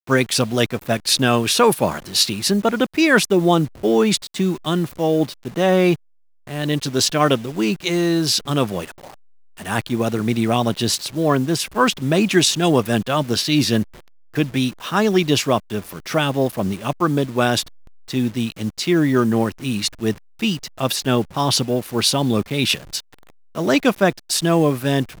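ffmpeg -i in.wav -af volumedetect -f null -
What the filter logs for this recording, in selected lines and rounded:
mean_volume: -19.6 dB
max_volume: -2.0 dB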